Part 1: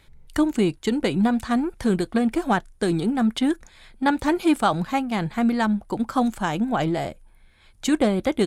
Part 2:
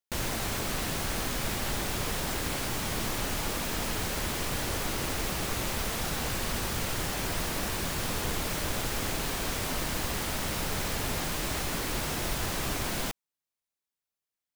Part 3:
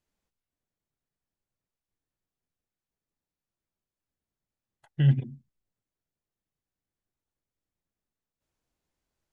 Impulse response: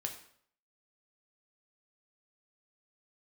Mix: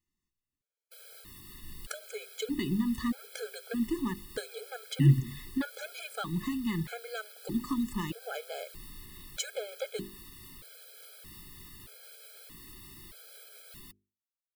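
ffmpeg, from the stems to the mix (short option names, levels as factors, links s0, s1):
-filter_complex "[0:a]acompressor=threshold=0.0355:ratio=4,adelay=1550,volume=1.33[s0];[1:a]alimiter=limit=0.075:level=0:latency=1:release=121,aexciter=amount=1:drive=6.9:freq=3500,adelay=800,volume=0.158[s1];[2:a]volume=1[s2];[s0][s1][s2]amix=inputs=3:normalize=0,equalizer=f=780:t=o:w=0.76:g=-13,bandreject=f=50:t=h:w=6,bandreject=f=100:t=h:w=6,bandreject=f=150:t=h:w=6,bandreject=f=200:t=h:w=6,bandreject=f=250:t=h:w=6,bandreject=f=300:t=h:w=6,bandreject=f=350:t=h:w=6,bandreject=f=400:t=h:w=6,afftfilt=real='re*gt(sin(2*PI*0.8*pts/sr)*(1-2*mod(floor(b*sr/1024/430),2)),0)':imag='im*gt(sin(2*PI*0.8*pts/sr)*(1-2*mod(floor(b*sr/1024/430),2)),0)':win_size=1024:overlap=0.75"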